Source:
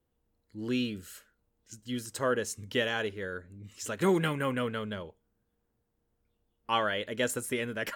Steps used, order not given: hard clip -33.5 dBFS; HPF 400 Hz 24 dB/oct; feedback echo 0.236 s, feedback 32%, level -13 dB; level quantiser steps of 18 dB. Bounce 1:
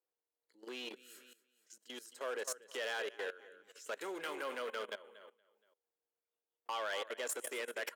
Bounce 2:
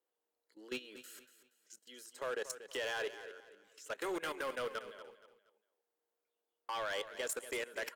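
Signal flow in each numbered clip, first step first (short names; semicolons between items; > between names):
feedback echo > level quantiser > hard clip > HPF; HPF > level quantiser > hard clip > feedback echo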